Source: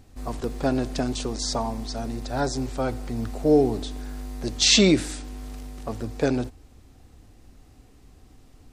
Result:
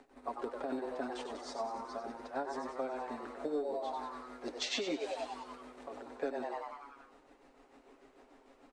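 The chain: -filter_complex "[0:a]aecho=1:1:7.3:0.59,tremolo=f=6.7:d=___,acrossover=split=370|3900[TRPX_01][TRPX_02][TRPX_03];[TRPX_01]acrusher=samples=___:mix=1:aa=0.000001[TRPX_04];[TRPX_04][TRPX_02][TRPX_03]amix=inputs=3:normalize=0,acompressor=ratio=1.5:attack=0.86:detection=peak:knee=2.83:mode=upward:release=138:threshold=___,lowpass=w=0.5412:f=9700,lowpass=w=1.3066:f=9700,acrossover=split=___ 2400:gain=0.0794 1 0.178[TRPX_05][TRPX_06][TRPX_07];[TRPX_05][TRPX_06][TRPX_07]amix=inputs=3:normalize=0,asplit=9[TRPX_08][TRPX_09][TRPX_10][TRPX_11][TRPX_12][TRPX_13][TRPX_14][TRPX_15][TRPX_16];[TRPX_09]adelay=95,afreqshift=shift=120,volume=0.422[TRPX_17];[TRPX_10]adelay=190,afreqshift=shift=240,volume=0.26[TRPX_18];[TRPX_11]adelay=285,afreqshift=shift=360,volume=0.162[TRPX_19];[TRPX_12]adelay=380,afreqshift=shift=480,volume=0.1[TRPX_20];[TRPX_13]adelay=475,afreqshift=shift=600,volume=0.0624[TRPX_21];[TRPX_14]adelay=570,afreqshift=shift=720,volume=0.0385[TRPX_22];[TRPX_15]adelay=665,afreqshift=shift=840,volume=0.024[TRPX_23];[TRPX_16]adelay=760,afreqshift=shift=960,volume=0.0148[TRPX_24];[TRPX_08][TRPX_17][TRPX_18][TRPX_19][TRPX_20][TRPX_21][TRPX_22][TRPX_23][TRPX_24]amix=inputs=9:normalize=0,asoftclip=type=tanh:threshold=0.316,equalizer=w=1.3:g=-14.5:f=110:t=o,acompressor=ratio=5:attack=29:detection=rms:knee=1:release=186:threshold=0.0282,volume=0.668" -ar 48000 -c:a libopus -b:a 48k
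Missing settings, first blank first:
0.81, 11, 0.0398, 240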